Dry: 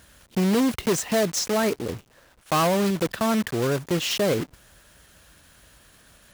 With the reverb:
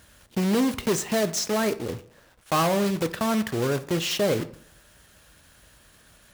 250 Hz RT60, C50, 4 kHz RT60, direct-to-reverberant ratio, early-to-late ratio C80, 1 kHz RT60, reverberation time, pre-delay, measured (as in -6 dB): 0.60 s, 17.0 dB, 0.40 s, 11.0 dB, 20.0 dB, 0.65 s, 0.65 s, 3 ms